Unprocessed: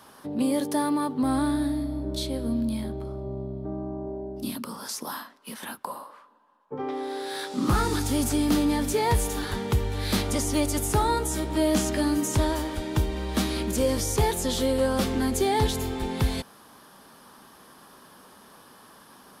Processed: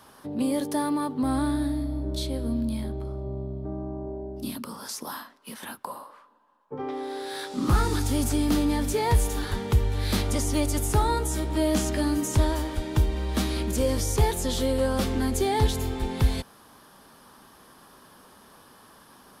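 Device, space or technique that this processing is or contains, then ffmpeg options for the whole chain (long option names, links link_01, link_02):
low shelf boost with a cut just above: -af "lowshelf=frequency=110:gain=7.5,equalizer=frequency=190:width_type=o:width=0.77:gain=-2,volume=-1.5dB"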